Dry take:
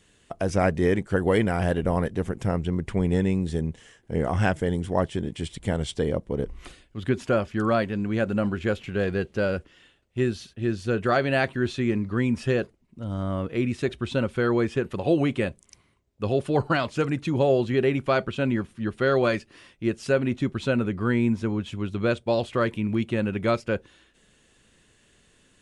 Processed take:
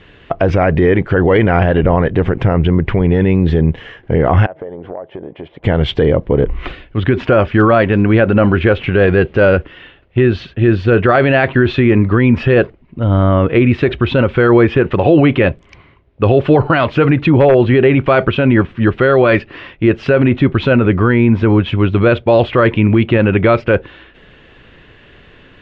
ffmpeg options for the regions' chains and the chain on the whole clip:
ffmpeg -i in.wav -filter_complex "[0:a]asettb=1/sr,asplit=3[link_01][link_02][link_03];[link_01]atrim=end=4.464[link_04];[link_02]atrim=start=4.46:end=5.64,asetpts=PTS-STARTPTS,afade=type=in:duration=0.004:curve=qsin,afade=type=out:start_time=1.176:duration=0.004:curve=qsin,bandpass=frequency=620:width_type=q:width=2,acompressor=threshold=-41dB:ratio=16:attack=3.2:release=140:knee=1:detection=peak[link_05];[link_03]atrim=start=5.636[link_06];[link_04][link_05]acrossfade=duration=0.004:curve1=hsin:curve2=qsin[link_07];[link_07][link_06]acrossfade=duration=0.004:curve1=qsin:curve2=hsin,asettb=1/sr,asplit=3[link_08][link_09][link_10];[link_08]atrim=end=17.264[link_11];[link_09]atrim=start=17.26:end=17.7,asetpts=PTS-STARTPTS,afade=type=in:duration=0.004:curve=qsin,afade=type=out:start_time=0.436:duration=0.004:curve=qsin,highshelf=frequency=5200:gain=-7.5,aeval=exprs='0.211*(abs(mod(val(0)/0.211+3,4)-2)-1)':channel_layout=same[link_12];[link_10]atrim=start=17.696[link_13];[link_11][link_12]acrossfade=duration=0.004:curve1=hsin:curve2=qsin[link_14];[link_14][link_13]acrossfade=duration=0.004:curve1=qsin:curve2=hsin,lowpass=frequency=3000:width=0.5412,lowpass=frequency=3000:width=1.3066,equalizer=frequency=210:width=3.6:gain=-6,alimiter=level_in=20.5dB:limit=-1dB:release=50:level=0:latency=1,volume=-1dB" out.wav

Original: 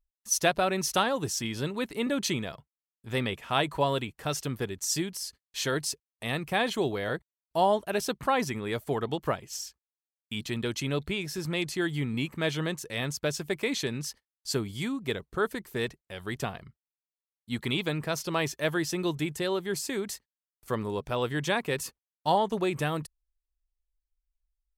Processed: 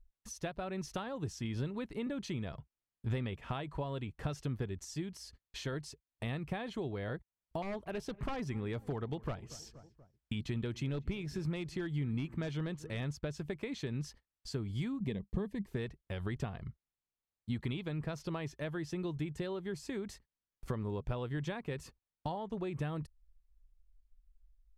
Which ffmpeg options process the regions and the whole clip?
ffmpeg -i in.wav -filter_complex "[0:a]asettb=1/sr,asplit=3[link_01][link_02][link_03];[link_01]atrim=end=7.624[link_04];[link_02]atrim=start=7.62:end=13.1,asetpts=PTS-STARTPTS,afade=type=in:duration=0.004:curve=qsin,afade=type=out:start_time=5.476:duration=0.004:curve=qsin,aeval=exprs='0.0841*(abs(mod(val(0)/0.0841+3,4)-2)-1)':channel_layout=same,asplit=2[link_05][link_06];[link_06]adelay=238,lowpass=frequency=1600:poles=1,volume=-22dB,asplit=2[link_07][link_08];[link_08]adelay=238,lowpass=frequency=1600:poles=1,volume=0.48,asplit=2[link_09][link_10];[link_10]adelay=238,lowpass=frequency=1600:poles=1,volume=0.48[link_11];[link_05][link_07][link_09][link_11]amix=inputs=4:normalize=0,atrim=end_sample=241668[link_12];[link_03]atrim=start=13.096[link_13];[link_04][link_12]acrossfade=duration=0.004:curve1=hsin:curve2=qsin[link_14];[link_14][link_13]acrossfade=duration=0.004:curve1=qsin:curve2=hsin,asettb=1/sr,asplit=3[link_15][link_16][link_17];[link_15]atrim=end=15.004[link_18];[link_16]atrim=start=15:end=15.68,asetpts=PTS-STARTPTS,afade=type=in:duration=0.004:curve=qsin,afade=type=out:start_time=0.676:duration=0.004:curve=qsin,agate=range=-33dB:threshold=-52dB:ratio=3:release=100:detection=peak,asuperstop=centerf=1400:order=4:qfactor=2.8,equalizer=frequency=200:width_type=o:width=0.44:gain=12.5[link_19];[link_17]atrim=start=15.676[link_20];[link_18][link_19]acrossfade=duration=0.004:curve1=hsin:curve2=qsin[link_21];[link_21][link_20]acrossfade=duration=0.004:curve1=qsin:curve2=hsin,acompressor=threshold=-41dB:ratio=5,aemphasis=mode=reproduction:type=bsi,volume=1dB" out.wav

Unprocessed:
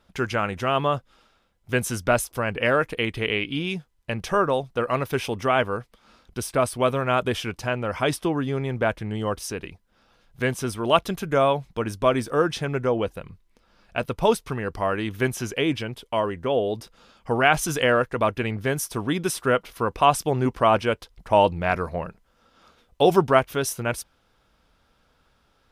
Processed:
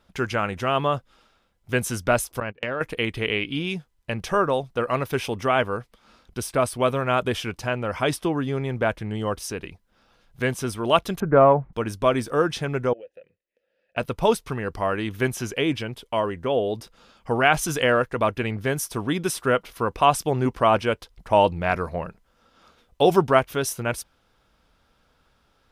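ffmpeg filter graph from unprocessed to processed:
ffmpeg -i in.wav -filter_complex "[0:a]asettb=1/sr,asplit=3[link_01][link_02][link_03];[link_01]atrim=end=2.404[link_04];[link_02]atrim=start=2.4:end=2.81,asetpts=PTS-STARTPTS,afade=type=in:duration=0.004:curve=qsin,afade=type=out:start_time=0.406:duration=0.004:curve=qsin,lowpass=frequency=4700:width=0.5412,lowpass=frequency=4700:width=1.3066,agate=range=-28dB:threshold=-27dB:ratio=16:release=100:detection=peak,acompressor=threshold=-24dB:ratio=6:attack=3.2:release=140:knee=1:detection=peak[link_05];[link_03]atrim=start=2.806[link_06];[link_04][link_05]acrossfade=duration=0.004:curve1=hsin:curve2=qsin[link_07];[link_07][link_06]acrossfade=duration=0.004:curve1=qsin:curve2=hsin,asettb=1/sr,asplit=3[link_08][link_09][link_10];[link_08]atrim=end=11.204[link_11];[link_09]atrim=start=11.2:end=11.73,asetpts=PTS-STARTPTS,afade=type=in:duration=0.004:curve=qsin,afade=type=out:start_time=0.526:duration=0.004:curve=qsin,lowpass=frequency=1500:width=0.5412,lowpass=frequency=1500:width=1.3066,acontrast=36[link_12];[link_10]atrim=start=11.726[link_13];[link_11][link_12]acrossfade=duration=0.004:curve1=hsin:curve2=qsin[link_14];[link_14][link_13]acrossfade=duration=0.004:curve1=qsin:curve2=hsin,asettb=1/sr,asplit=3[link_15][link_16][link_17];[link_15]atrim=end=12.934[link_18];[link_16]atrim=start=12.93:end=13.97,asetpts=PTS-STARTPTS,afade=type=in:duration=0.004:curve=qsin,afade=type=out:start_time=1.036:duration=0.004:curve=qsin,asplit=3[link_19][link_20][link_21];[link_19]bandpass=frequency=530:width_type=q:width=8,volume=0dB[link_22];[link_20]bandpass=frequency=1840:width_type=q:width=8,volume=-6dB[link_23];[link_21]bandpass=frequency=2480:width_type=q:width=8,volume=-9dB[link_24];[link_22][link_23][link_24]amix=inputs=3:normalize=0,acompressor=threshold=-41dB:ratio=3:attack=3.2:release=140:knee=1:detection=peak[link_25];[link_17]atrim=start=13.966[link_26];[link_18][link_25]acrossfade=duration=0.004:curve1=hsin:curve2=qsin[link_27];[link_27][link_26]acrossfade=duration=0.004:curve1=qsin:curve2=hsin" out.wav

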